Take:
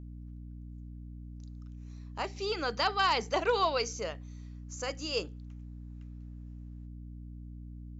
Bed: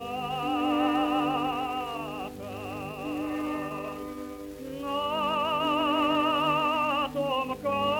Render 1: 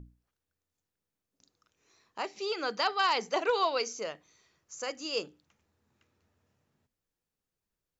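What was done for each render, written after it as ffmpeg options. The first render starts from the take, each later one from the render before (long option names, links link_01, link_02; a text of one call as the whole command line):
ffmpeg -i in.wav -af "bandreject=frequency=60:width_type=h:width=6,bandreject=frequency=120:width_type=h:width=6,bandreject=frequency=180:width_type=h:width=6,bandreject=frequency=240:width_type=h:width=6,bandreject=frequency=300:width_type=h:width=6" out.wav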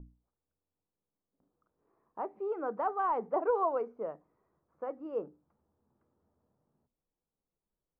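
ffmpeg -i in.wav -af "lowpass=frequency=1100:width=0.5412,lowpass=frequency=1100:width=1.3066,equalizer=frequency=100:width=4.7:gain=-13" out.wav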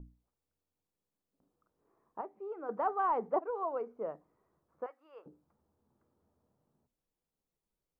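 ffmpeg -i in.wav -filter_complex "[0:a]asettb=1/sr,asplit=3[link_01][link_02][link_03];[link_01]atrim=end=4.864[link_04];[link_02]atrim=start=4.86:end=5.26,asetpts=PTS-STARTPTS,afade=type=in:duration=0.004:curve=qsin,afade=type=out:start_time=0.396:duration=0.004:curve=qsin,highpass=1400[link_05];[link_03]atrim=start=5.256[link_06];[link_04][link_05]acrossfade=duration=0.004:curve1=hsin:curve2=qsin[link_07];[link_07][link_06]acrossfade=duration=0.004:curve1=qsin:curve2=hsin,asplit=4[link_08][link_09][link_10][link_11];[link_08]atrim=end=2.212[link_12];[link_09]atrim=start=2.208:end=2.692,asetpts=PTS-STARTPTS,volume=-7dB[link_13];[link_10]atrim=start=2.688:end=3.39,asetpts=PTS-STARTPTS,afade=type=out:start_time=0.698:duration=0.004:curve=hsin:silence=0.237137[link_14];[link_11]atrim=start=3.39,asetpts=PTS-STARTPTS,afade=type=in:duration=0.73:silence=0.237137[link_15];[link_12][link_13]acrossfade=duration=0.004:curve1=hsin:curve2=hsin[link_16];[link_14][link_15]concat=n=2:v=0:a=1[link_17];[link_16][link_17]acrossfade=duration=0.004:curve1=hsin:curve2=hsin" out.wav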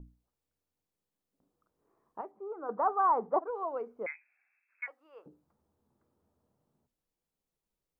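ffmpeg -i in.wav -filter_complex "[0:a]asettb=1/sr,asplit=3[link_01][link_02][link_03];[link_01]atrim=end=2.314[link_04];[link_02]atrim=start=2.31:end=3.48,asetpts=PTS-STARTPTS,afade=type=in:duration=0.004:curve=qsin,afade=type=out:start_time=1.166:duration=0.004:curve=qsin,lowpass=frequency=1200:width_type=q:width=1.8[link_05];[link_03]atrim=start=3.476[link_06];[link_04][link_05]acrossfade=duration=0.004:curve1=hsin:curve2=qsin[link_07];[link_07][link_06]acrossfade=duration=0.004:curve1=qsin:curve2=hsin,asettb=1/sr,asplit=3[link_08][link_09][link_10];[link_08]atrim=end=4.064[link_11];[link_09]atrim=start=4.06:end=4.88,asetpts=PTS-STARTPTS,afade=type=in:duration=0.004:curve=qsin,afade=type=out:start_time=0.816:duration=0.004:curve=qsin,lowpass=frequency=2300:width_type=q:width=0.5098,lowpass=frequency=2300:width_type=q:width=0.6013,lowpass=frequency=2300:width_type=q:width=0.9,lowpass=frequency=2300:width_type=q:width=2.563,afreqshift=-2700[link_12];[link_10]atrim=start=4.876[link_13];[link_11][link_12]acrossfade=duration=0.004:curve1=hsin:curve2=qsin[link_14];[link_14][link_13]acrossfade=duration=0.004:curve1=qsin:curve2=hsin" out.wav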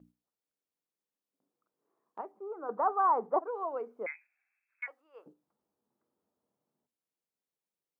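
ffmpeg -i in.wav -af "agate=range=-6dB:threshold=-56dB:ratio=16:detection=peak,highpass=210" out.wav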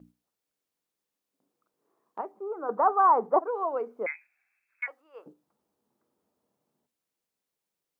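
ffmpeg -i in.wav -af "volume=6dB" out.wav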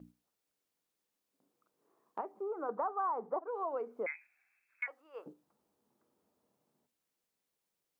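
ffmpeg -i in.wav -af "alimiter=limit=-16dB:level=0:latency=1:release=374,acompressor=threshold=-37dB:ratio=2.5" out.wav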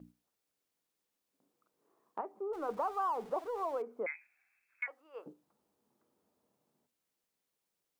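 ffmpeg -i in.wav -filter_complex "[0:a]asettb=1/sr,asplit=3[link_01][link_02][link_03];[link_01]atrim=end=2.534[link_04];[link_02]atrim=start=2.53:end=3.82,asetpts=PTS-STARTPTS,afade=type=in:duration=0.004:curve=qsin,afade=type=out:start_time=1.286:duration=0.004:curve=qsin,aeval=exprs='val(0)+0.5*0.00282*sgn(val(0))':channel_layout=same[link_05];[link_03]atrim=start=3.816[link_06];[link_04][link_05]acrossfade=duration=0.004:curve1=hsin:curve2=qsin[link_07];[link_07][link_06]acrossfade=duration=0.004:curve1=qsin:curve2=hsin" out.wav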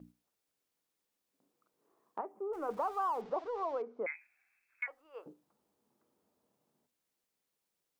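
ffmpeg -i in.wav -filter_complex "[0:a]asettb=1/sr,asplit=3[link_01][link_02][link_03];[link_01]atrim=end=2.184[link_04];[link_02]atrim=start=2.18:end=2.71,asetpts=PTS-STARTPTS,afade=type=in:duration=0.004:curve=qsin,afade=type=out:start_time=0.526:duration=0.004:curve=qsin,equalizer=frequency=3900:width_type=o:width=0.74:gain=-8[link_05];[link_03]atrim=start=2.706[link_06];[link_04][link_05]acrossfade=duration=0.004:curve1=hsin:curve2=qsin[link_07];[link_07][link_06]acrossfade=duration=0.004:curve1=qsin:curve2=hsin,asettb=1/sr,asplit=3[link_08][link_09][link_10];[link_08]atrim=end=3.214[link_11];[link_09]atrim=start=3.21:end=4.13,asetpts=PTS-STARTPTS,afade=type=in:duration=0.004:curve=qsin,afade=type=out:start_time=0.916:duration=0.004:curve=qsin,lowpass=frequency=5700:width=0.5412,lowpass=frequency=5700:width=1.3066[link_12];[link_10]atrim=start=4.126[link_13];[link_11][link_12]acrossfade=duration=0.004:curve1=hsin:curve2=qsin[link_14];[link_14][link_13]acrossfade=duration=0.004:curve1=qsin:curve2=hsin,asplit=3[link_15][link_16][link_17];[link_15]afade=type=out:start_time=4.84:duration=0.02[link_18];[link_16]asubboost=boost=8.5:cutoff=65,afade=type=in:start_time=4.84:duration=0.02,afade=type=out:start_time=5.28:duration=0.02[link_19];[link_17]afade=type=in:start_time=5.28:duration=0.02[link_20];[link_18][link_19][link_20]amix=inputs=3:normalize=0" out.wav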